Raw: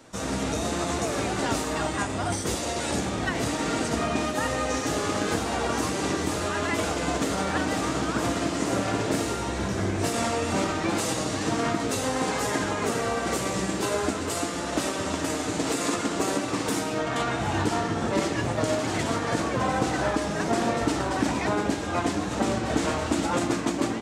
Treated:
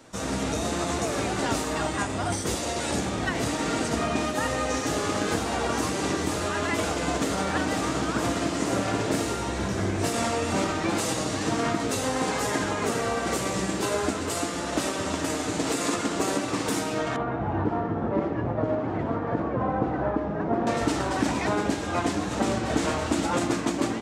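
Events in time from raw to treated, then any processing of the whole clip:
17.16–20.67 s: low-pass 1.1 kHz

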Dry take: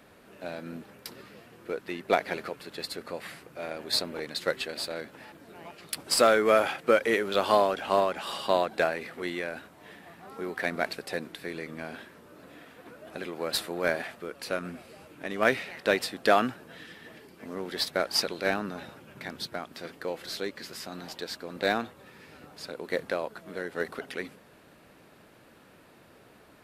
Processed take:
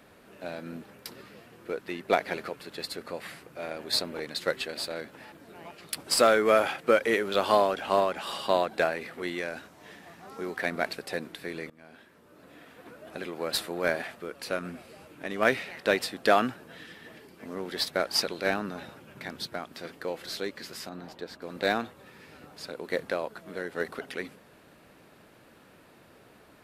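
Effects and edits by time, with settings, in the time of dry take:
9.38–10.57 s: peaking EQ 6 kHz +6.5 dB 0.75 oct
11.70–12.82 s: fade in, from -21 dB
20.89–21.42 s: treble shelf 2.1 kHz -12 dB

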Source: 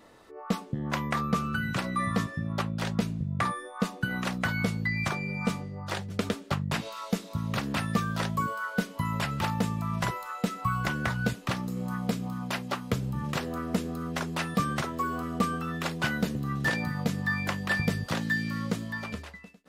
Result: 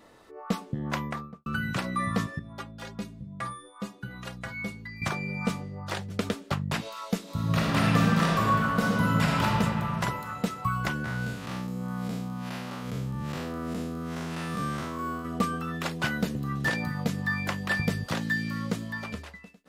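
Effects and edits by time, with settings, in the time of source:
0.91–1.46 s: studio fade out
2.39–5.02 s: inharmonic resonator 60 Hz, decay 0.31 s, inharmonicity 0.03
7.23–9.44 s: reverb throw, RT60 2.9 s, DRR -5 dB
11.04–15.25 s: spectral blur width 158 ms

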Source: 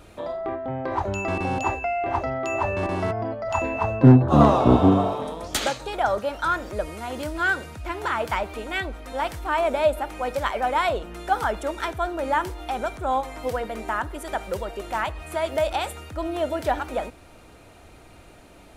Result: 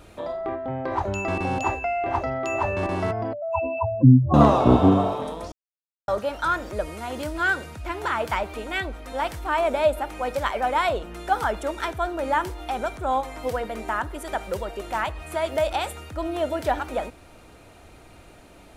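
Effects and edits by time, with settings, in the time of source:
3.33–4.34 s: spectral contrast enhancement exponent 3.2
5.52–6.08 s: mute

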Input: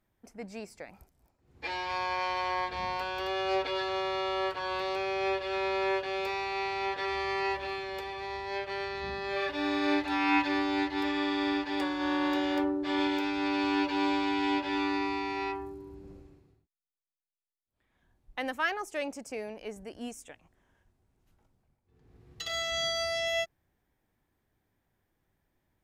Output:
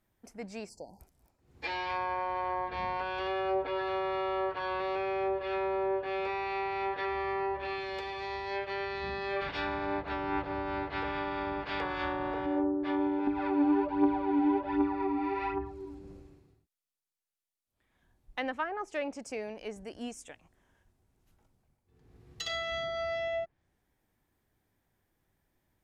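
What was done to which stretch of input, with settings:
0.69–1.00 s: spectral selection erased 1–4.2 kHz
9.40–12.45 s: spectral peaks clipped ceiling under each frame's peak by 21 dB
13.27–15.99 s: phaser 1.3 Hz, delay 3.9 ms, feedback 59%
whole clip: low-pass that closes with the level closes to 830 Hz, closed at -25.5 dBFS; treble shelf 5.9 kHz +4.5 dB

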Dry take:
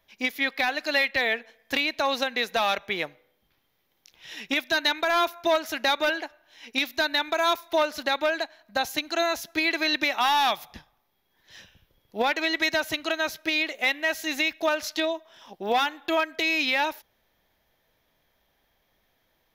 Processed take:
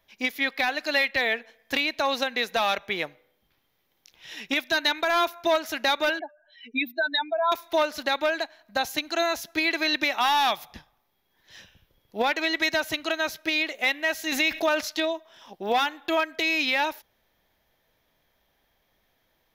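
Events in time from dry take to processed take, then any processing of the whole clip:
6.19–7.52 s: spectral contrast enhancement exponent 3.1
14.32–14.81 s: level flattener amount 50%

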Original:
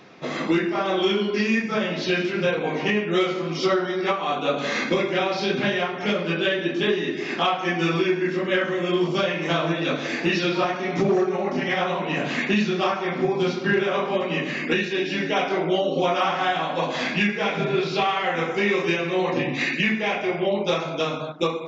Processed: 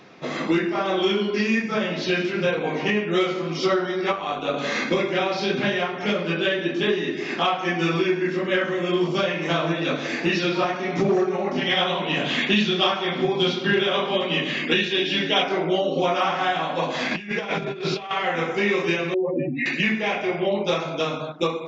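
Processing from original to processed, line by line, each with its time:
4.12–4.54 s: AM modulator 100 Hz, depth 35%
11.56–15.43 s: peaking EQ 3.3 kHz +13 dB 0.37 oct
17.11–18.11 s: compressor with a negative ratio -27 dBFS, ratio -0.5
19.14–19.66 s: spectral contrast enhancement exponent 3

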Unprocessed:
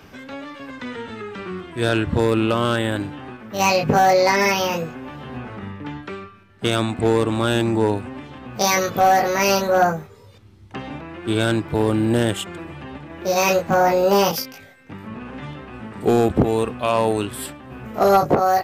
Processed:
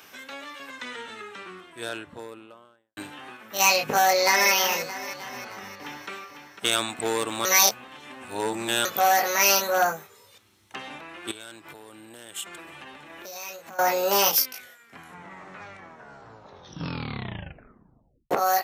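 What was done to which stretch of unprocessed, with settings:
0.83–2.97 s: studio fade out
3.95–4.51 s: echo throw 310 ms, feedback 60%, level -12 dB
5.29–6.09 s: echo throw 500 ms, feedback 35%, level -8.5 dB
7.45–8.85 s: reverse
11.31–13.79 s: compression 16:1, threshold -31 dBFS
14.42 s: tape stop 3.89 s
whole clip: high-pass 1.2 kHz 6 dB/octave; treble shelf 6.2 kHz +10.5 dB; band-stop 4.8 kHz, Q 15

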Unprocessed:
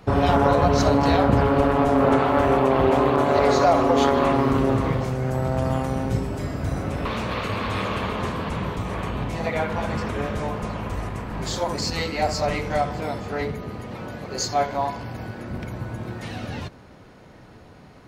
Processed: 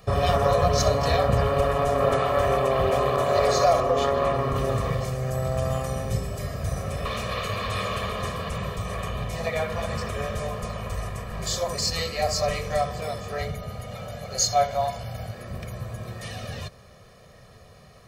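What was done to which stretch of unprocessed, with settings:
3.80–4.56 s: treble shelf 3.2 kHz -8.5 dB
13.38–15.34 s: comb 1.4 ms, depth 49%
whole clip: treble shelf 4.6 kHz +11 dB; comb 1.7 ms, depth 80%; trim -5.5 dB

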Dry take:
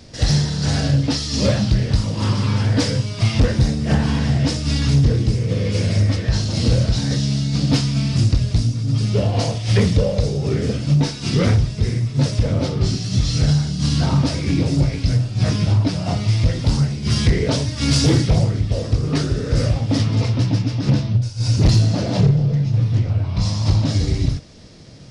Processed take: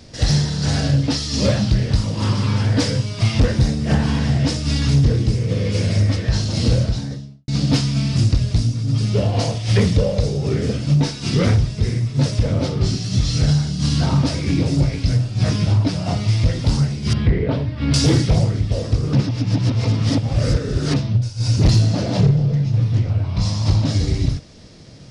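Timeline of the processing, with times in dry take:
6.66–7.48 s: studio fade out
17.13–17.94 s: distance through air 430 m
19.13–20.96 s: reverse

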